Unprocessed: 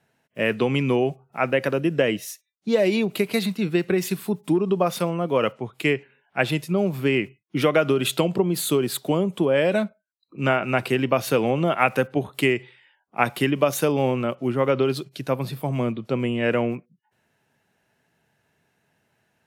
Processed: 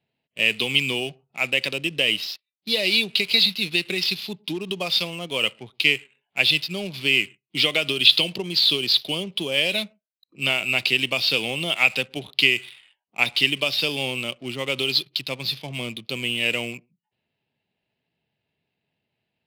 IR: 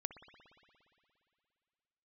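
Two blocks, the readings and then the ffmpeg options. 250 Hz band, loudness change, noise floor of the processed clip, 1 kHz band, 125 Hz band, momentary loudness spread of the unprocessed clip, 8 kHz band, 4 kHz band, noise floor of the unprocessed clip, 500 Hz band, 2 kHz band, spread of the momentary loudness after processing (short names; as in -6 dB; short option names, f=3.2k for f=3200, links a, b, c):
-9.0 dB, +2.0 dB, -83 dBFS, -9.5 dB, -9.0 dB, 7 LU, -2.5 dB, +14.5 dB, -73 dBFS, -9.0 dB, +6.0 dB, 11 LU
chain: -filter_complex "[0:a]aexciter=amount=13.9:drive=7.3:freq=2.4k,aresample=11025,aresample=44100,asplit=2[a][b];[1:a]atrim=start_sample=2205,afade=t=out:st=0.2:d=0.01,atrim=end_sample=9261[c];[b][c]afir=irnorm=-1:irlink=0,volume=-12dB[d];[a][d]amix=inputs=2:normalize=0,adynamicsmooth=sensitivity=5:basefreq=1k,volume=-10.5dB"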